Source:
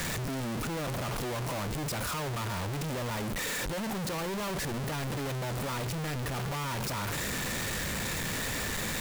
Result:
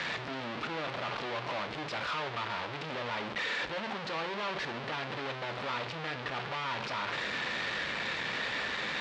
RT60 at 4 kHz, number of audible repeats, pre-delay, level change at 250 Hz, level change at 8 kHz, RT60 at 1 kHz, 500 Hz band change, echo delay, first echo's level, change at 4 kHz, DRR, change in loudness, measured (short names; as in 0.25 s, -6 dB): 0.45 s, none, 5 ms, -7.5 dB, -17.0 dB, 0.55 s, -2.0 dB, none, none, +0.5 dB, 10.0 dB, -2.0 dB